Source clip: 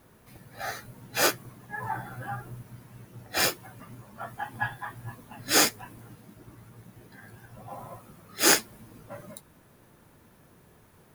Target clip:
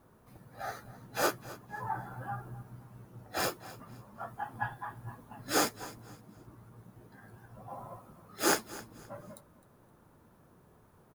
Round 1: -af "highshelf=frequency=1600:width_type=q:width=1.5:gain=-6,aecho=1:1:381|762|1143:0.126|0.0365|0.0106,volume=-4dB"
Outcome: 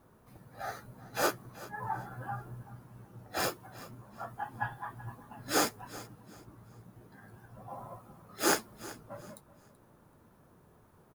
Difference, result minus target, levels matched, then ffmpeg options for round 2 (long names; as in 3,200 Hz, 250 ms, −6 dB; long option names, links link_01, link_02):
echo 121 ms late
-af "highshelf=frequency=1600:width_type=q:width=1.5:gain=-6,aecho=1:1:260|520|780:0.126|0.0365|0.0106,volume=-4dB"